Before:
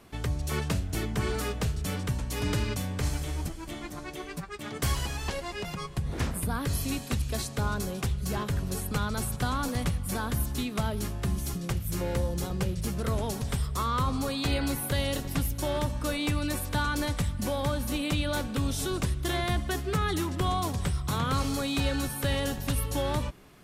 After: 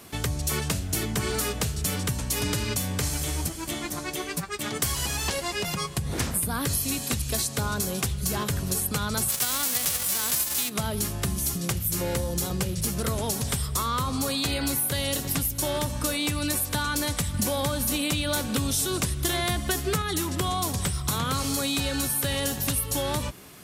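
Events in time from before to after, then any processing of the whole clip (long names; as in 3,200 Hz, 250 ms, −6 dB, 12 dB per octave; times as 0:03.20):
0:09.28–0:10.68: spectral envelope flattened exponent 0.3
0:17.34–0:20.02: clip gain +4.5 dB
whole clip: high-pass filter 67 Hz; high-shelf EQ 4,500 Hz +12 dB; downward compressor, threshold −29 dBFS; level +5.5 dB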